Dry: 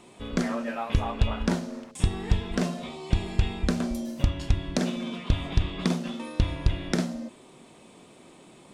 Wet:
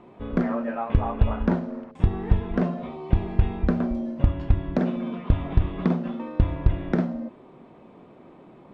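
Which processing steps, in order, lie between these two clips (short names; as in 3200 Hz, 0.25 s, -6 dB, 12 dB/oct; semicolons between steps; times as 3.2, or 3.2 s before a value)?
LPF 1400 Hz 12 dB/oct; gain +3.5 dB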